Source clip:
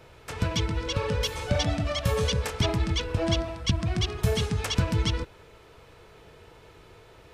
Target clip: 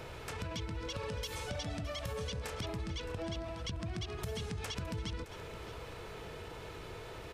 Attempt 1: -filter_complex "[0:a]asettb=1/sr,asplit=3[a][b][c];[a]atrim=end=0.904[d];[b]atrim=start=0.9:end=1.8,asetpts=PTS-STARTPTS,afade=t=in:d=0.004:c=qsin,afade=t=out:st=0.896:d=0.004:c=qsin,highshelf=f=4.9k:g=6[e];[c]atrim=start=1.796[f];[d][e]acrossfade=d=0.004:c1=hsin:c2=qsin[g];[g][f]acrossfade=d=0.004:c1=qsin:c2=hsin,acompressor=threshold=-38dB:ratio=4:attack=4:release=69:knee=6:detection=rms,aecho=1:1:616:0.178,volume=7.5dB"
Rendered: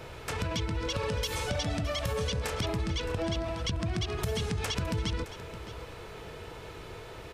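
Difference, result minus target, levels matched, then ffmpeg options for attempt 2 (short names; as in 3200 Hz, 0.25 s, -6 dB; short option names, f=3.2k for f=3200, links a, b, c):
compressor: peak gain reduction -8 dB
-filter_complex "[0:a]asettb=1/sr,asplit=3[a][b][c];[a]atrim=end=0.904[d];[b]atrim=start=0.9:end=1.8,asetpts=PTS-STARTPTS,afade=t=in:d=0.004:c=qsin,afade=t=out:st=0.896:d=0.004:c=qsin,highshelf=f=4.9k:g=6[e];[c]atrim=start=1.796[f];[d][e]acrossfade=d=0.004:c1=hsin:c2=qsin[g];[g][f]acrossfade=d=0.004:c1=qsin:c2=hsin,acompressor=threshold=-48.5dB:ratio=4:attack=4:release=69:knee=6:detection=rms,aecho=1:1:616:0.178,volume=7.5dB"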